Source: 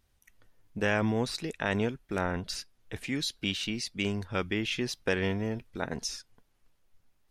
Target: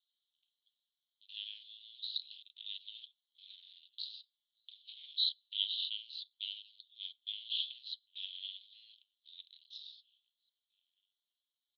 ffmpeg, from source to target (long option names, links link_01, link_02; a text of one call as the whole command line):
ffmpeg -i in.wav -filter_complex "[0:a]aeval=exprs='val(0)*sin(2*PI*110*n/s)':channel_layout=same,asplit=2[link_01][link_02];[link_02]adelay=1574,volume=-21dB,highshelf=frequency=4000:gain=-35.4[link_03];[link_01][link_03]amix=inputs=2:normalize=0,asplit=2[link_04][link_05];[link_05]aeval=exprs='val(0)*gte(abs(val(0)),0.0237)':channel_layout=same,volume=-6.5dB[link_06];[link_04][link_06]amix=inputs=2:normalize=0,atempo=0.62,asuperpass=centerf=3600:order=8:qfactor=3.1,volume=2.5dB" out.wav